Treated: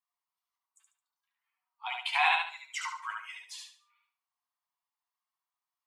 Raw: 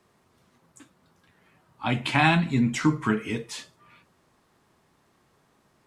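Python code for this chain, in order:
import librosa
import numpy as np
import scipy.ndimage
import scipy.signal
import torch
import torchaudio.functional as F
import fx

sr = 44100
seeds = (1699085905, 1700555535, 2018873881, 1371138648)

y = fx.bin_expand(x, sr, power=1.5)
y = scipy.signal.sosfilt(scipy.signal.cheby1(6, 6, 700.0, 'highpass', fs=sr, output='sos'), y)
y = fx.echo_feedback(y, sr, ms=72, feedback_pct=31, wet_db=-3.0)
y = y * 10.0 ** (-1.0 / 20.0)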